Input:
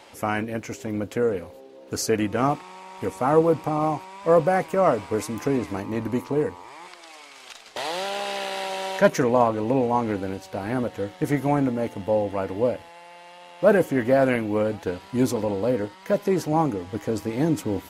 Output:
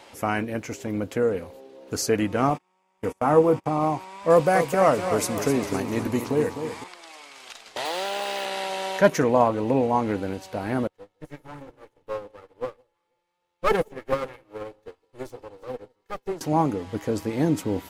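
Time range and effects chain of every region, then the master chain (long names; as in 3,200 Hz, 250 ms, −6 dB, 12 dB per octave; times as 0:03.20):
0:02.50–0:03.66: double-tracking delay 27 ms −13 dB + noise gate −32 dBFS, range −28 dB + parametric band 4,100 Hz −7.5 dB 0.25 octaves
0:04.30–0:06.84: high-shelf EQ 2,800 Hz +8.5 dB + feedback echo with a swinging delay time 253 ms, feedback 48%, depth 87 cents, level −9 dB
0:07.85–0:08.46: one scale factor per block 5 bits + high-pass filter 210 Hz 24 dB per octave
0:10.87–0:16.41: lower of the sound and its delayed copy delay 2.3 ms + delay that swaps between a low-pass and a high-pass 161 ms, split 870 Hz, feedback 54%, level −12 dB + expander for the loud parts 2.5 to 1, over −38 dBFS
whole clip: no processing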